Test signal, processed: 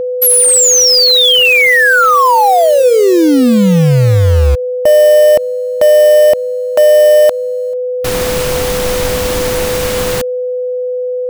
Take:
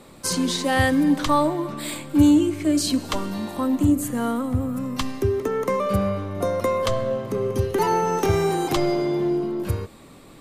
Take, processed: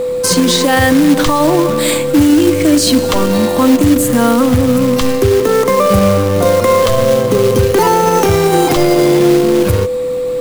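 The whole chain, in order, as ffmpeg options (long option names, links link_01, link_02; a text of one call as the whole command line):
ffmpeg -i in.wav -af "acrusher=bits=3:mode=log:mix=0:aa=0.000001,aeval=exprs='val(0)+0.0355*sin(2*PI*500*n/s)':channel_layout=same,alimiter=level_in=16dB:limit=-1dB:release=50:level=0:latency=1,volume=-1dB" out.wav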